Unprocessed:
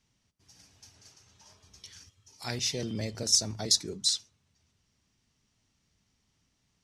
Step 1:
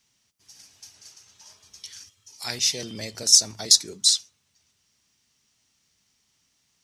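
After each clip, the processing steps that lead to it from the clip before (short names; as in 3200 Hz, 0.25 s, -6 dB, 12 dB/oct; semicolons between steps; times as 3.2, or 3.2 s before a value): tilt +2.5 dB/oct; gain +2.5 dB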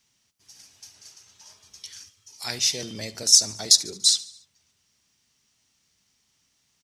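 feedback echo 72 ms, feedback 56%, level -20 dB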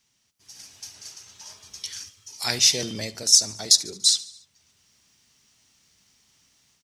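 AGC gain up to 7.5 dB; gain -1 dB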